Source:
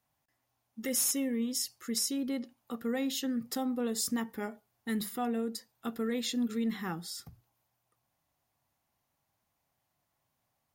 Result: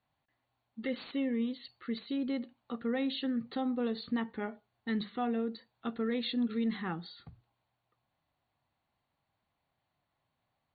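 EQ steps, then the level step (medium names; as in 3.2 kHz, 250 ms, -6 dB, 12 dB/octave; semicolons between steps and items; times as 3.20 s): brick-wall FIR low-pass 4.6 kHz; 0.0 dB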